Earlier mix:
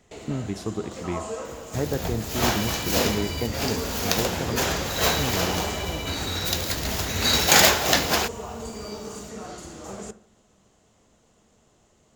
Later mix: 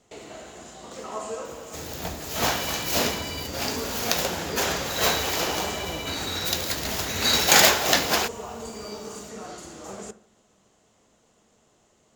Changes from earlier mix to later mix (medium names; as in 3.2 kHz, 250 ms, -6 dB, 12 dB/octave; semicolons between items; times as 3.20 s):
speech: muted; master: add bass shelf 140 Hz -9 dB